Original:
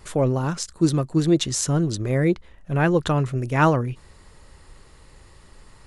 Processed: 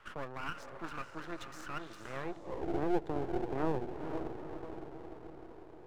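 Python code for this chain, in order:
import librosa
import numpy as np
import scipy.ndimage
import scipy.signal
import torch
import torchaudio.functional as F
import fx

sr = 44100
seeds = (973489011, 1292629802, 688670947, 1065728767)

y = fx.echo_diffused(x, sr, ms=463, feedback_pct=48, wet_db=-7.5)
y = fx.filter_sweep_bandpass(y, sr, from_hz=1400.0, to_hz=380.0, start_s=2.12, end_s=2.63, q=4.1)
y = np.maximum(y, 0.0)
y = fx.band_squash(y, sr, depth_pct=40)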